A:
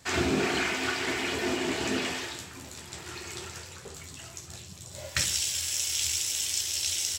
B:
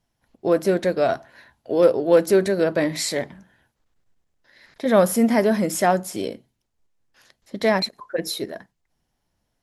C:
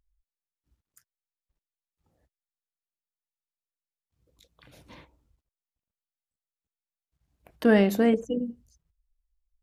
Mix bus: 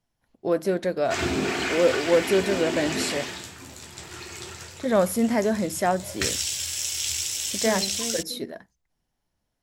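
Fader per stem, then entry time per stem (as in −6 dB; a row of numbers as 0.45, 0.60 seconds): +1.0, −4.5, −13.5 decibels; 1.05, 0.00, 0.00 seconds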